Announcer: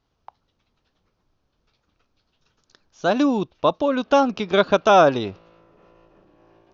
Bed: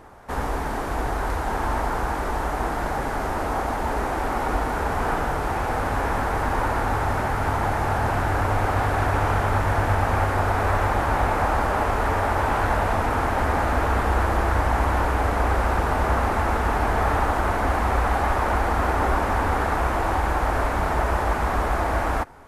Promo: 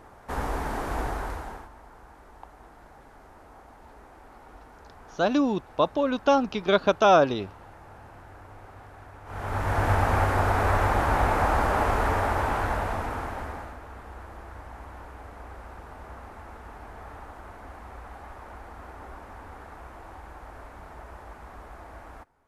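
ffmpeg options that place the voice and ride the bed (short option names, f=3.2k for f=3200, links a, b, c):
-filter_complex "[0:a]adelay=2150,volume=-4dB[a];[1:a]volume=20dB,afade=t=out:st=0.99:d=0.7:silence=0.0841395,afade=t=in:st=9.25:d=0.65:silence=0.0668344,afade=t=out:st=11.93:d=1.85:silence=0.1[b];[a][b]amix=inputs=2:normalize=0"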